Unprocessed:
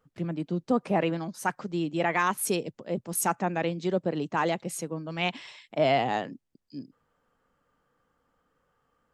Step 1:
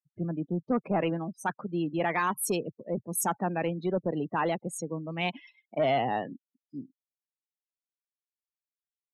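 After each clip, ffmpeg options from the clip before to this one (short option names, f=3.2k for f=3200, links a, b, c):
-af "afftfilt=real='re*gte(hypot(re,im),0.00562)':imag='im*gte(hypot(re,im),0.00562)':win_size=1024:overlap=0.75,asoftclip=type=tanh:threshold=-18.5dB,afftdn=nr=25:nf=-39"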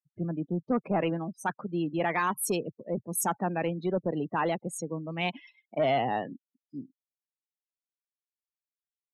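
-af anull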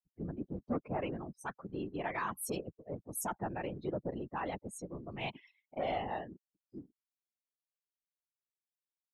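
-af "afftfilt=real='hypot(re,im)*cos(2*PI*random(0))':imag='hypot(re,im)*sin(2*PI*random(1))':win_size=512:overlap=0.75,volume=-3dB"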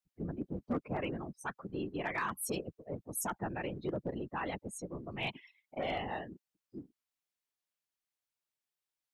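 -filter_complex "[0:a]equalizer=f=2.3k:w=0.35:g=3,acrossover=split=570|980[a][b][c];[b]acompressor=threshold=-51dB:ratio=6[d];[a][d][c]amix=inputs=3:normalize=0,asoftclip=type=hard:threshold=-27.5dB,volume=1dB"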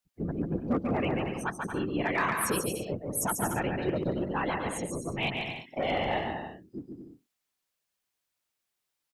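-af "aecho=1:1:140|231|290.2|328.6|353.6:0.631|0.398|0.251|0.158|0.1,volume=6dB"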